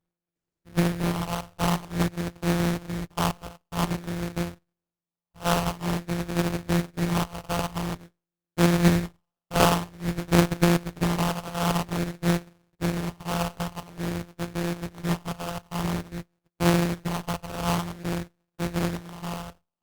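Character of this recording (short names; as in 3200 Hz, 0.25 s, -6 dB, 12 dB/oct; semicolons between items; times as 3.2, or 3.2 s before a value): a buzz of ramps at a fixed pitch in blocks of 256 samples; phasing stages 4, 0.5 Hz, lowest notch 300–2000 Hz; aliases and images of a low sample rate 2000 Hz, jitter 20%; Opus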